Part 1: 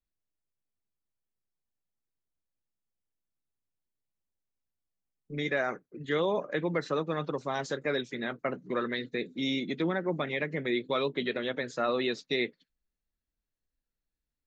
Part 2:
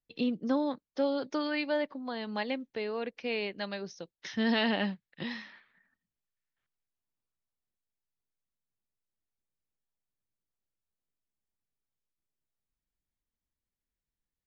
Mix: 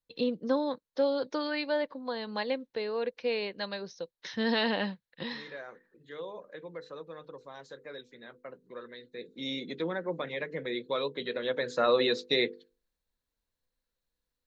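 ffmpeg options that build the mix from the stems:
-filter_complex "[0:a]bandreject=f=50:t=h:w=6,bandreject=f=100:t=h:w=6,bandreject=f=150:t=h:w=6,bandreject=f=200:t=h:w=6,bandreject=f=250:t=h:w=6,bandreject=f=300:t=h:w=6,bandreject=f=350:t=h:w=6,bandreject=f=400:t=h:w=6,bandreject=f=450:t=h:w=6,bandreject=f=500:t=h:w=6,afade=t=in:st=9.1:d=0.41:silence=0.281838,afade=t=in:st=11.34:d=0.47:silence=0.473151[a];[1:a]volume=-2.5dB[b];[a][b]amix=inputs=2:normalize=0,equalizer=f=500:t=o:w=0.33:g=10,equalizer=f=1k:t=o:w=0.33:g=6,equalizer=f=1.6k:t=o:w=0.33:g=4,equalizer=f=4k:t=o:w=0.33:g=8"

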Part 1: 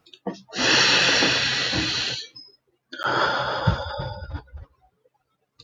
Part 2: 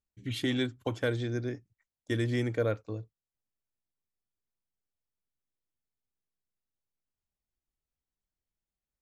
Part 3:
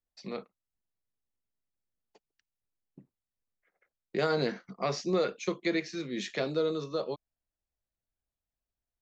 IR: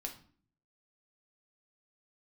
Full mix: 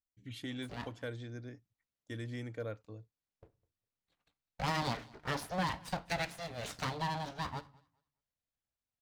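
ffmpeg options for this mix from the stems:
-filter_complex "[1:a]volume=-11dB[a];[2:a]lowpass=6.1k,aeval=exprs='abs(val(0))':c=same,highpass=47,adelay=450,volume=-3dB,asplit=3[b][c][d];[c]volume=-9dB[e];[d]volume=-23dB[f];[3:a]atrim=start_sample=2205[g];[e][g]afir=irnorm=-1:irlink=0[h];[f]aecho=0:1:204|408|612:1|0.19|0.0361[i];[a][b][h][i]amix=inputs=4:normalize=0,equalizer=f=370:t=o:w=0.22:g=-6.5"

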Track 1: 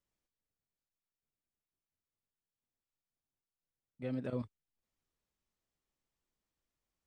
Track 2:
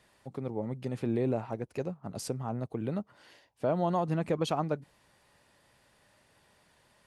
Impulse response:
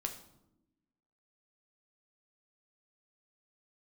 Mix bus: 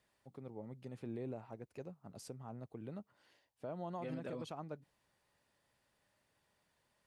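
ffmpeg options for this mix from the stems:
-filter_complex "[0:a]highpass=f=330:p=1,volume=0dB[a];[1:a]volume=-13.5dB[b];[a][b]amix=inputs=2:normalize=0,alimiter=level_in=10dB:limit=-24dB:level=0:latency=1:release=144,volume=-10dB"

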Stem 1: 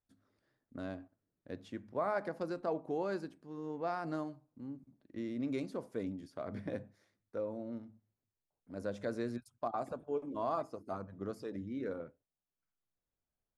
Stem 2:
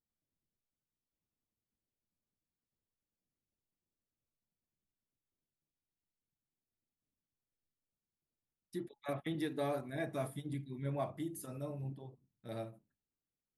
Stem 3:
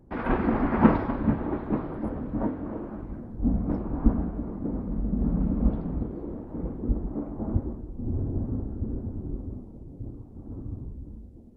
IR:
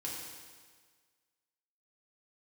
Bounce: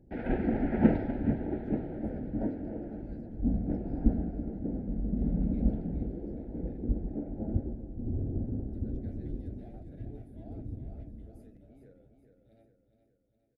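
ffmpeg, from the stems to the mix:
-filter_complex "[0:a]volume=-19dB,asplit=2[a][b];[b]volume=-7dB[c];[1:a]asoftclip=type=tanh:threshold=-37dB,volume=-19dB,asplit=2[d][e];[e]volume=-9dB[f];[2:a]volume=-4dB,asplit=2[g][h];[h]volume=-16dB[i];[c][f][i]amix=inputs=3:normalize=0,aecho=0:1:414|828|1242|1656|2070|2484|2898|3312:1|0.52|0.27|0.141|0.0731|0.038|0.0198|0.0103[j];[a][d][g][j]amix=inputs=4:normalize=0,asuperstop=centerf=1100:order=4:qfactor=1.4,highshelf=f=3.1k:g=-8.5"

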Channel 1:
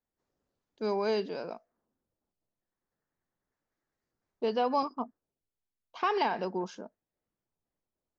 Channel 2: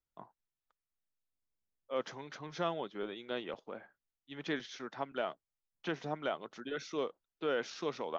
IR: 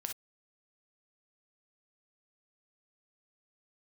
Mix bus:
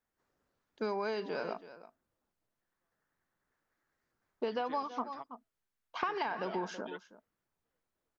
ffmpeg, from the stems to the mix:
-filter_complex "[0:a]equalizer=f=1.5k:w=1:g=8,volume=1dB,asplit=3[a][b][c];[b]volume=-17.5dB[d];[1:a]highpass=220,aecho=1:1:6.2:0.65,adelay=200,volume=-7dB[e];[c]apad=whole_len=370003[f];[e][f]sidechaingate=range=-55dB:threshold=-52dB:ratio=16:detection=peak[g];[d]aecho=0:1:326:1[h];[a][g][h]amix=inputs=3:normalize=0,acompressor=threshold=-31dB:ratio=10"

